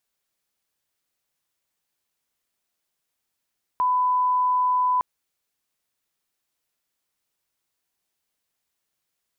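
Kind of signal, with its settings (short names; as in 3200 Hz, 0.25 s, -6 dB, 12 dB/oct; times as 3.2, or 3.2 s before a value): line-up tone -18 dBFS 1.21 s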